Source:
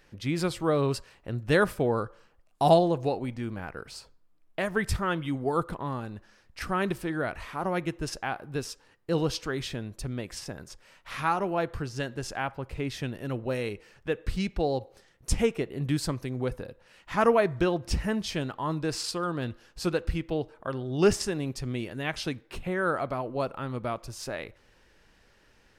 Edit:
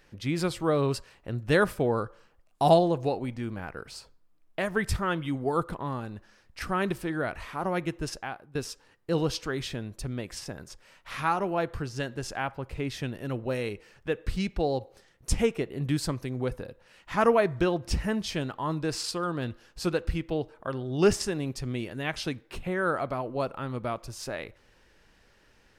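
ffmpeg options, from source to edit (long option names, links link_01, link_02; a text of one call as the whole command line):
ffmpeg -i in.wav -filter_complex "[0:a]asplit=2[link_01][link_02];[link_01]atrim=end=8.55,asetpts=PTS-STARTPTS,afade=type=out:start_time=8.05:duration=0.5:silence=0.158489[link_03];[link_02]atrim=start=8.55,asetpts=PTS-STARTPTS,afade=type=in:duration=0.004:curve=hsin:silence=0.158489[link_04];[link_03][link_04]concat=n=2:v=0:a=1" out.wav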